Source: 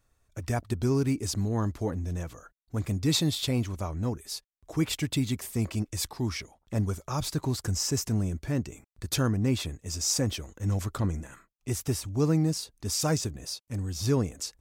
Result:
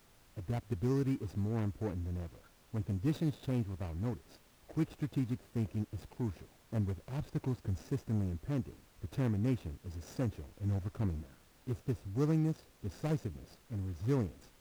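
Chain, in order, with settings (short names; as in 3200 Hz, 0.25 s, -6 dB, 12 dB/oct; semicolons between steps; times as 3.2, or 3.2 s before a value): median filter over 41 samples; added noise pink -58 dBFS; gain -6 dB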